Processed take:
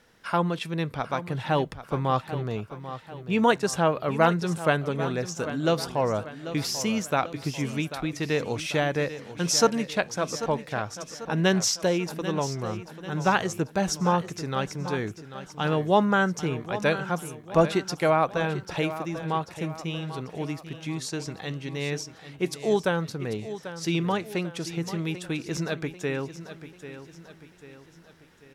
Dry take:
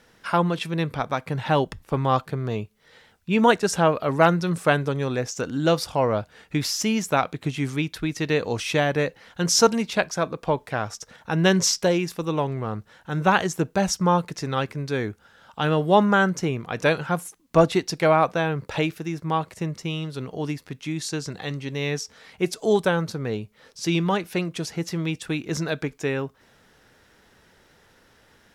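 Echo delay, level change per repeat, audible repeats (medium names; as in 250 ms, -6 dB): 791 ms, -6.5 dB, 4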